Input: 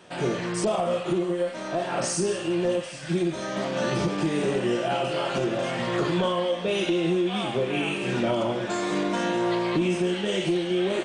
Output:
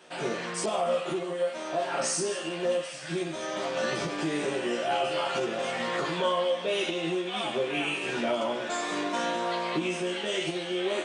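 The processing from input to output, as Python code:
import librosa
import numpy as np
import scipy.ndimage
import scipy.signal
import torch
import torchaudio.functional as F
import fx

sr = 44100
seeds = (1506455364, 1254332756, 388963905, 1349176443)

y = fx.highpass(x, sr, hz=450.0, slope=6)
y = fx.doubler(y, sr, ms=13.0, db=-3.5)
y = y * librosa.db_to_amplitude(-2.0)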